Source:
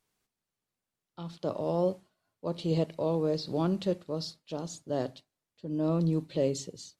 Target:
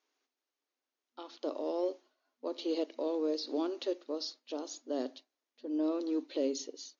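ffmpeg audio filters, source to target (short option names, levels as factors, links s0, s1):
-filter_complex "[0:a]acrossover=split=400|3000[s0][s1][s2];[s1]acompressor=threshold=0.01:ratio=2.5[s3];[s0][s3][s2]amix=inputs=3:normalize=0,aeval=exprs='0.112*(cos(1*acos(clip(val(0)/0.112,-1,1)))-cos(1*PI/2))+0.00158*(cos(6*acos(clip(val(0)/0.112,-1,1)))-cos(6*PI/2))+0.00141*(cos(8*acos(clip(val(0)/0.112,-1,1)))-cos(8*PI/2))':c=same,afftfilt=real='re*between(b*sr/4096,240,6900)':imag='im*between(b*sr/4096,240,6900)':win_size=4096:overlap=0.75"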